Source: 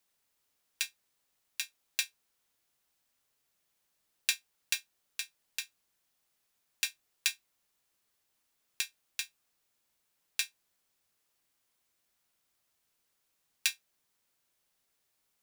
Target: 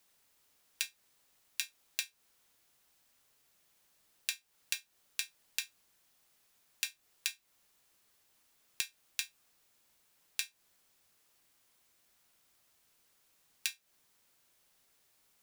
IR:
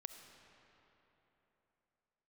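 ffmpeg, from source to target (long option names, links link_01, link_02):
-af "acompressor=threshold=-38dB:ratio=12,volume=7dB"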